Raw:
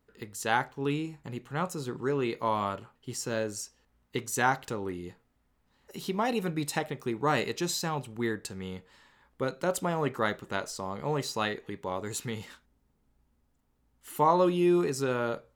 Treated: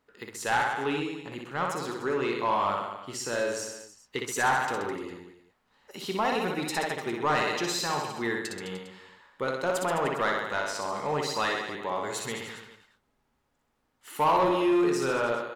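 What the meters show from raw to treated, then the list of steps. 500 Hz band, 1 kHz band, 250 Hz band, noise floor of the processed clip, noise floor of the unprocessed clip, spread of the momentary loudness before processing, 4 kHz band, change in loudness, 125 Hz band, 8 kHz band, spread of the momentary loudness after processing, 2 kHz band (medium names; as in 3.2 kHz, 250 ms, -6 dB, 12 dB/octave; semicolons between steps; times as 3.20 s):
+1.5 dB, +3.5 dB, 0.0 dB, -74 dBFS, -72 dBFS, 14 LU, +3.5 dB, +2.0 dB, -4.5 dB, +1.0 dB, 14 LU, +4.5 dB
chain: reverse bouncing-ball echo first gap 60 ms, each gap 1.15×, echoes 5; overdrive pedal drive 16 dB, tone 3.7 kHz, clips at -9.5 dBFS; trim -5 dB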